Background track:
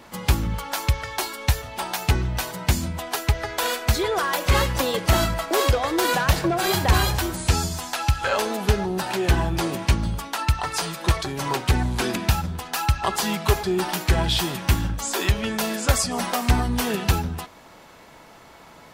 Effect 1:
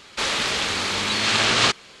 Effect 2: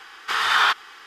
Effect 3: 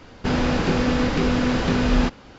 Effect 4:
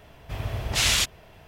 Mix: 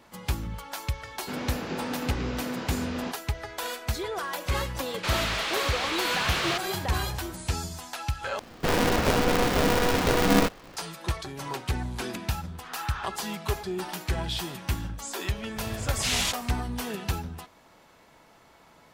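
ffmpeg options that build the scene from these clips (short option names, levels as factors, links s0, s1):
-filter_complex "[3:a]asplit=2[s0][s1];[0:a]volume=0.355[s2];[s0]highpass=170[s3];[1:a]asplit=2[s4][s5];[s5]highpass=f=720:p=1,volume=15.8,asoftclip=type=tanh:threshold=0.596[s6];[s4][s6]amix=inputs=2:normalize=0,lowpass=f=2700:p=1,volume=0.501[s7];[s1]aeval=exprs='val(0)*sgn(sin(2*PI*240*n/s))':c=same[s8];[2:a]lowpass=f=1300:p=1[s9];[s2]asplit=2[s10][s11];[s10]atrim=end=8.394[s12];[s8]atrim=end=2.38,asetpts=PTS-STARTPTS,volume=0.75[s13];[s11]atrim=start=10.766[s14];[s3]atrim=end=2.38,asetpts=PTS-STARTPTS,volume=0.282,afade=t=in:d=0.004:c=hsin,afade=t=out:st=2.376:d=0.004:c=hsin,adelay=1030[s15];[s7]atrim=end=2,asetpts=PTS-STARTPTS,volume=0.178,afade=t=in:d=0.004:c=hsin,afade=t=out:st=1.996:d=0.004:c=hsin,adelay=4860[s16];[s9]atrim=end=1.06,asetpts=PTS-STARTPTS,volume=0.141,afade=t=in:d=0.004:c=hsin,afade=t=out:st=1.056:d=0.004:c=hsin,adelay=12350[s17];[4:a]atrim=end=1.47,asetpts=PTS-STARTPTS,volume=0.562,afade=t=in:d=0.004:c=hsin,afade=t=out:st=1.466:d=0.004:c=hsin,adelay=15270[s18];[s12][s13]acrossfade=d=0.004:c1=hsin:c2=hsin[s19];[s19][s14]acrossfade=d=0.004:c1=hsin:c2=hsin[s20];[s20][s15][s16][s17][s18]amix=inputs=5:normalize=0"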